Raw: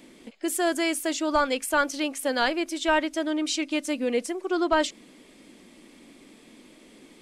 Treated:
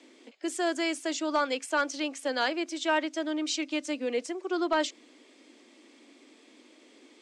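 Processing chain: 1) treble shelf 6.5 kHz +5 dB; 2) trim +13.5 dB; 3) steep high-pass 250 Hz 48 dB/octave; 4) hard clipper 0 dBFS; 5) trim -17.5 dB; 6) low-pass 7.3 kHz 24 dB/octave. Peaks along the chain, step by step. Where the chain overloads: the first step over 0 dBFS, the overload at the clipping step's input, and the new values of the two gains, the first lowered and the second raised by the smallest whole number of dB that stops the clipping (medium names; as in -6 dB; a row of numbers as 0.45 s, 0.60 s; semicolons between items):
-10.5 dBFS, +3.0 dBFS, +4.0 dBFS, 0.0 dBFS, -17.5 dBFS, -17.0 dBFS; step 2, 4.0 dB; step 2 +9.5 dB, step 5 -13.5 dB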